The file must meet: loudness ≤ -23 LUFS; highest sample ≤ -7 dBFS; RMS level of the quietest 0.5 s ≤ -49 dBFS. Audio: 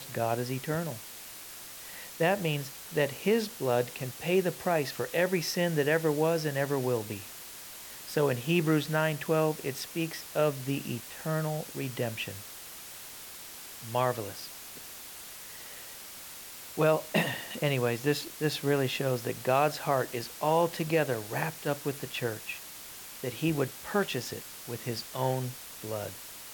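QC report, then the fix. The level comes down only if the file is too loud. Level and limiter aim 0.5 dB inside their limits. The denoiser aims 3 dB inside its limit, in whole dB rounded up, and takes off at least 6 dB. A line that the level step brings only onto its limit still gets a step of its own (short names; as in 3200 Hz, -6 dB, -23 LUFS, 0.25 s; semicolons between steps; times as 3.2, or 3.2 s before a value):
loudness -30.5 LUFS: OK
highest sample -12.5 dBFS: OK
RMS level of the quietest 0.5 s -45 dBFS: fail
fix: denoiser 7 dB, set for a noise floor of -45 dBFS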